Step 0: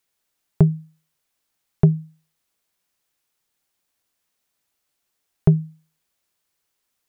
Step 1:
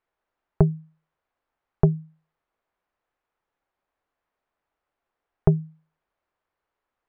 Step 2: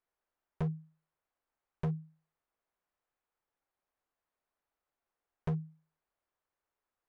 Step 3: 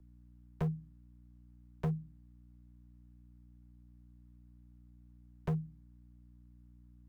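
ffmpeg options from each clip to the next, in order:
-af "lowpass=1200,equalizer=f=160:w=0.53:g=-10.5,volume=2"
-af "asoftclip=type=hard:threshold=0.0891,volume=0.398"
-filter_complex "[0:a]aeval=exprs='val(0)+0.00141*(sin(2*PI*60*n/s)+sin(2*PI*2*60*n/s)/2+sin(2*PI*3*60*n/s)/3+sin(2*PI*4*60*n/s)/4+sin(2*PI*5*60*n/s)/5)':c=same,acrossover=split=170|290|1000[s0][s1][s2][s3];[s2]acrusher=bits=6:mode=log:mix=0:aa=0.000001[s4];[s0][s1][s4][s3]amix=inputs=4:normalize=0"

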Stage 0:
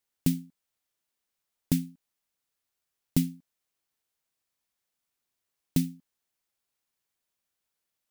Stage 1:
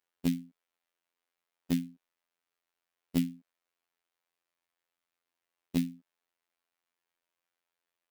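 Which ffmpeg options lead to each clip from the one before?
-af "bass=f=250:g=-13,treble=f=4000:g=-12,afftfilt=real='hypot(re,im)*cos(PI*b)':imag='0':win_size=2048:overlap=0.75,volume=1.88"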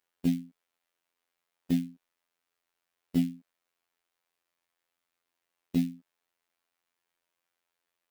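-af "asoftclip=type=tanh:threshold=0.141,volume=1.5"

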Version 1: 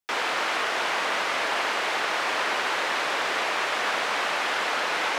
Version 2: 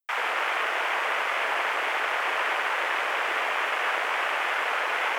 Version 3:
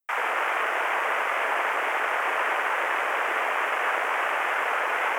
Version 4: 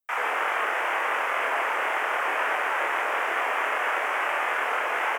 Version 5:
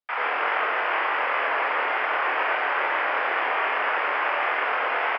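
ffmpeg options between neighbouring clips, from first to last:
-af "aemphasis=mode=production:type=bsi,afwtdn=0.0447"
-af "equalizer=f=4100:t=o:w=0.82:g=-14.5,volume=1.33"
-filter_complex "[0:a]asplit=2[s0][s1];[s1]adelay=26,volume=0.668[s2];[s0][s2]amix=inputs=2:normalize=0,volume=0.794"
-filter_complex "[0:a]asplit=2[s0][s1];[s1]aecho=0:1:64.14|110.8:0.282|0.631[s2];[s0][s2]amix=inputs=2:normalize=0,aresample=11025,aresample=44100"

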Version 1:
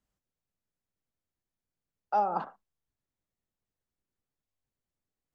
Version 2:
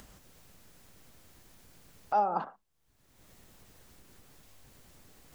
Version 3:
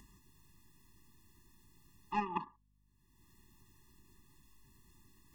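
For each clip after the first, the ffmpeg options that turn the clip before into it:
-af "acompressor=mode=upward:threshold=0.0282:ratio=2.5"
-af "aeval=exprs='val(0)+0.000447*(sin(2*PI*50*n/s)+sin(2*PI*2*50*n/s)/2+sin(2*PI*3*50*n/s)/3+sin(2*PI*4*50*n/s)/4+sin(2*PI*5*50*n/s)/5)':c=same,aeval=exprs='0.15*(cos(1*acos(clip(val(0)/0.15,-1,1)))-cos(1*PI/2))+0.0335*(cos(3*acos(clip(val(0)/0.15,-1,1)))-cos(3*PI/2))':c=same,afftfilt=real='re*eq(mod(floor(b*sr/1024/410),2),0)':imag='im*eq(mod(floor(b*sr/1024/410),2),0)':win_size=1024:overlap=0.75,volume=1.58"

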